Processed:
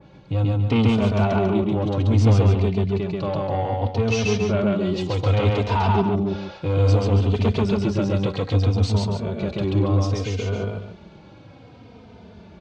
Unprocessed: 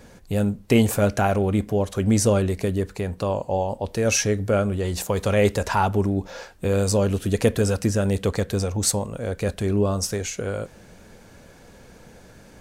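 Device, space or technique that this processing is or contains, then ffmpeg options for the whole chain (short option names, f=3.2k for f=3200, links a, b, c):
barber-pole flanger into a guitar amplifier: -filter_complex "[0:a]equalizer=f=2k:t=o:w=1.4:g=-3.5,asplit=2[a][b];[b]adelay=3.1,afreqshift=-0.63[c];[a][c]amix=inputs=2:normalize=1,asoftclip=type=tanh:threshold=-20dB,highpass=80,equalizer=f=100:t=q:w=4:g=5,equalizer=f=530:t=q:w=4:g=-6,equalizer=f=1.7k:t=q:w=4:g=-10,lowpass=f=3.8k:w=0.5412,lowpass=f=3.8k:w=1.3066,aecho=1:1:134.1|279.9:0.891|0.355,adynamicequalizer=threshold=0.00631:dfrequency=2500:dqfactor=0.7:tfrequency=2500:tqfactor=0.7:attack=5:release=100:ratio=0.375:range=2:mode=boostabove:tftype=highshelf,volume=5dB"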